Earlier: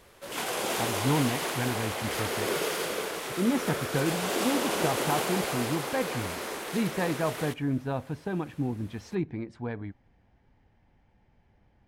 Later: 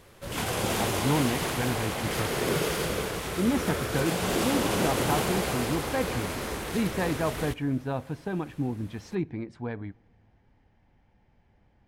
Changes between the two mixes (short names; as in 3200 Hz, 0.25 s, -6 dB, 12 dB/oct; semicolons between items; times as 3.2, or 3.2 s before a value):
background: remove HPF 320 Hz 12 dB/oct; reverb: on, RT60 1.8 s